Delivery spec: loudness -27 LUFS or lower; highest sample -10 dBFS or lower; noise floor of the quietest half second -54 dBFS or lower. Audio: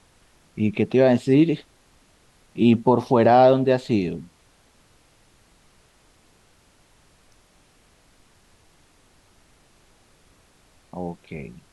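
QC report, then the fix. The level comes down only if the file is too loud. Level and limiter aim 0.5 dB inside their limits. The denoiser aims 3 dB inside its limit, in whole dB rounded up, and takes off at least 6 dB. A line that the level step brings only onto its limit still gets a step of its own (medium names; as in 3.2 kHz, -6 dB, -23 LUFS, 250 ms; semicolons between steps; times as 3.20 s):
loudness -19.5 LUFS: fail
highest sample -5.0 dBFS: fail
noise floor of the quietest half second -58 dBFS: pass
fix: trim -8 dB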